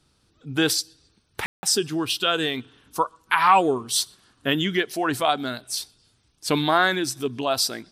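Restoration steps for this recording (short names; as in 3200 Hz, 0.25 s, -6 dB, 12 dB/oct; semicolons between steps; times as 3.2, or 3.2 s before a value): room tone fill 1.46–1.63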